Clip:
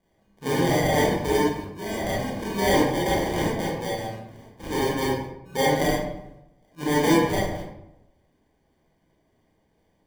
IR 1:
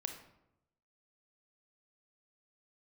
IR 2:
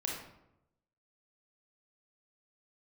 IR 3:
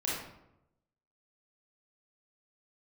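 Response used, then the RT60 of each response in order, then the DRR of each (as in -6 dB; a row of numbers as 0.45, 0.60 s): 3; 0.85, 0.85, 0.85 s; 5.0, -2.0, -6.5 dB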